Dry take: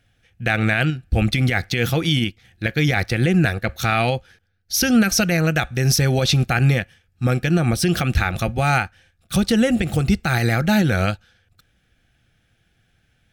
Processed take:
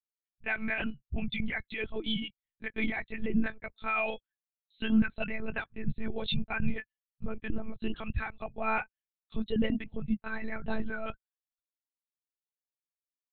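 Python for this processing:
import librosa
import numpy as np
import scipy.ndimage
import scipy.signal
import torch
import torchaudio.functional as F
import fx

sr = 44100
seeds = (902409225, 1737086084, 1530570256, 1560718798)

y = fx.bin_expand(x, sr, power=2.0)
y = scipy.signal.sosfilt(scipy.signal.butter(2, 70.0, 'highpass', fs=sr, output='sos'), y)
y = fx.lpc_monotone(y, sr, seeds[0], pitch_hz=220.0, order=10)
y = y * 10.0 ** (-7.0 / 20.0)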